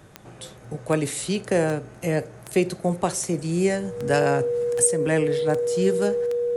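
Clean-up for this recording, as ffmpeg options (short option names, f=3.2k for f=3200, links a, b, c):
-af "adeclick=t=4,bandreject=f=480:w=30"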